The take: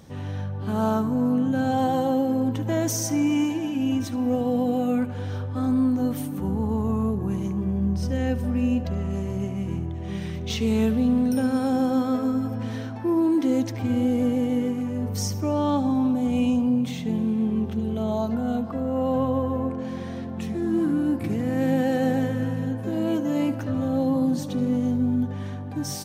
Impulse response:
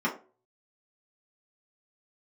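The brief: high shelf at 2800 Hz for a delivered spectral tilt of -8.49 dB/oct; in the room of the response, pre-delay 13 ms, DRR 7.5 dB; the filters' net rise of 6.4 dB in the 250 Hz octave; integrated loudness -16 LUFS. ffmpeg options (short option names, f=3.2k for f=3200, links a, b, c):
-filter_complex "[0:a]equalizer=f=250:t=o:g=7,highshelf=f=2.8k:g=-5,asplit=2[a][b];[1:a]atrim=start_sample=2205,adelay=13[c];[b][c]afir=irnorm=-1:irlink=0,volume=-18dB[d];[a][d]amix=inputs=2:normalize=0"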